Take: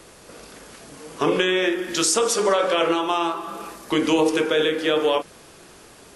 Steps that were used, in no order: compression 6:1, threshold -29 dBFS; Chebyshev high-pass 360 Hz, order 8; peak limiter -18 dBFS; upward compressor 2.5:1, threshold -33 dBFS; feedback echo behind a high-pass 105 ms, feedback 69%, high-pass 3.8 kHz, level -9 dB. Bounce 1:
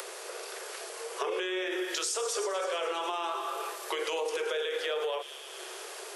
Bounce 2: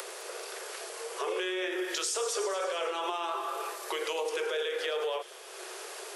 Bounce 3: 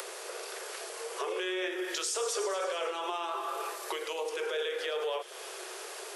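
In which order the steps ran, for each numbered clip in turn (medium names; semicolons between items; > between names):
feedback echo behind a high-pass > upward compressor > Chebyshev high-pass > peak limiter > compression; upward compressor > peak limiter > Chebyshev high-pass > compression > feedback echo behind a high-pass; peak limiter > compression > feedback echo behind a high-pass > upward compressor > Chebyshev high-pass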